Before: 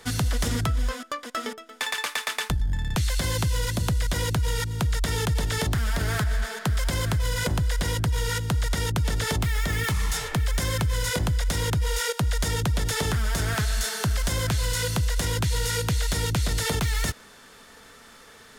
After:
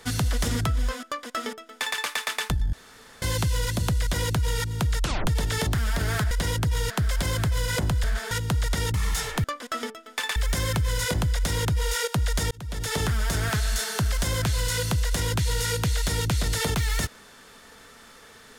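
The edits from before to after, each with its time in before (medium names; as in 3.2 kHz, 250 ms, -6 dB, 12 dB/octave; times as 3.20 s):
1.07–1.99 s: copy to 10.41 s
2.73–3.22 s: room tone
5.01 s: tape stop 0.26 s
6.31–6.58 s: swap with 7.72–8.31 s
8.94–9.91 s: delete
12.56–13.05 s: fade in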